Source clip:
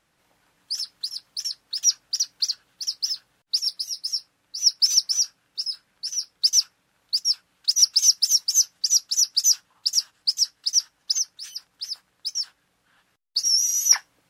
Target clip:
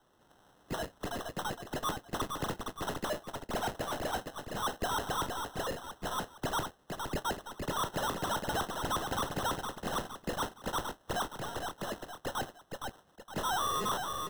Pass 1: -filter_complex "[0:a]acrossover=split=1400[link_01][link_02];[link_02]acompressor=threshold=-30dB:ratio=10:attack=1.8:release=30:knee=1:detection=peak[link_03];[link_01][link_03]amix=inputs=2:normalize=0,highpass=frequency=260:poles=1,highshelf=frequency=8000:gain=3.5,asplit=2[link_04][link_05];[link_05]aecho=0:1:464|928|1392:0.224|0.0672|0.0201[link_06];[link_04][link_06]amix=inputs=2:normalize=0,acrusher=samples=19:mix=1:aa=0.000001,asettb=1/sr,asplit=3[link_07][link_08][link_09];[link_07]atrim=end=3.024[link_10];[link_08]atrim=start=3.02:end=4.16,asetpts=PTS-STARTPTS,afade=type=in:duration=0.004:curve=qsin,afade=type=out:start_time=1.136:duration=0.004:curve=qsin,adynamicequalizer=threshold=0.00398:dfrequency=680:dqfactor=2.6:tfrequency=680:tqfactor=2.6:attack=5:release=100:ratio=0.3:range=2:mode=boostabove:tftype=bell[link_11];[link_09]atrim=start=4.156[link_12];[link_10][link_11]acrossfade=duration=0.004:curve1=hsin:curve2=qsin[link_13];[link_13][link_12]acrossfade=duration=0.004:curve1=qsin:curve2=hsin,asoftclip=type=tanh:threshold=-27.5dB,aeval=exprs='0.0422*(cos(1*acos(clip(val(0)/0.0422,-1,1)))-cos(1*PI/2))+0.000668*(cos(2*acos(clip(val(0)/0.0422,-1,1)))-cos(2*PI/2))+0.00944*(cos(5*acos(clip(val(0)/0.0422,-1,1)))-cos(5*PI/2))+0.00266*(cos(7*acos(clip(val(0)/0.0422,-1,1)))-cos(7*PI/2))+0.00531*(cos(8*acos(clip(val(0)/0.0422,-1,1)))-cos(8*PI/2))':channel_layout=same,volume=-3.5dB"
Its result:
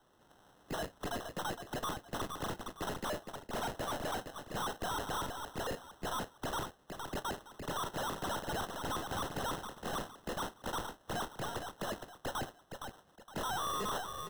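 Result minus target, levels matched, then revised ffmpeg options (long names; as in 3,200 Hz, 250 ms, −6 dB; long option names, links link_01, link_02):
downward compressor: peak gain reduction +10 dB
-filter_complex "[0:a]acrossover=split=1400[link_01][link_02];[link_02]acompressor=threshold=-19dB:ratio=10:attack=1.8:release=30:knee=1:detection=peak[link_03];[link_01][link_03]amix=inputs=2:normalize=0,highpass=frequency=260:poles=1,highshelf=frequency=8000:gain=3.5,asplit=2[link_04][link_05];[link_05]aecho=0:1:464|928|1392:0.224|0.0672|0.0201[link_06];[link_04][link_06]amix=inputs=2:normalize=0,acrusher=samples=19:mix=1:aa=0.000001,asettb=1/sr,asplit=3[link_07][link_08][link_09];[link_07]atrim=end=3.024[link_10];[link_08]atrim=start=3.02:end=4.16,asetpts=PTS-STARTPTS,afade=type=in:duration=0.004:curve=qsin,afade=type=out:start_time=1.136:duration=0.004:curve=qsin,adynamicequalizer=threshold=0.00398:dfrequency=680:dqfactor=2.6:tfrequency=680:tqfactor=2.6:attack=5:release=100:ratio=0.3:range=2:mode=boostabove:tftype=bell[link_11];[link_09]atrim=start=4.156[link_12];[link_10][link_11]acrossfade=duration=0.004:curve1=hsin:curve2=qsin[link_13];[link_13][link_12]acrossfade=duration=0.004:curve1=qsin:curve2=hsin,asoftclip=type=tanh:threshold=-27.5dB,aeval=exprs='0.0422*(cos(1*acos(clip(val(0)/0.0422,-1,1)))-cos(1*PI/2))+0.000668*(cos(2*acos(clip(val(0)/0.0422,-1,1)))-cos(2*PI/2))+0.00944*(cos(5*acos(clip(val(0)/0.0422,-1,1)))-cos(5*PI/2))+0.00266*(cos(7*acos(clip(val(0)/0.0422,-1,1)))-cos(7*PI/2))+0.00531*(cos(8*acos(clip(val(0)/0.0422,-1,1)))-cos(8*PI/2))':channel_layout=same,volume=-3.5dB"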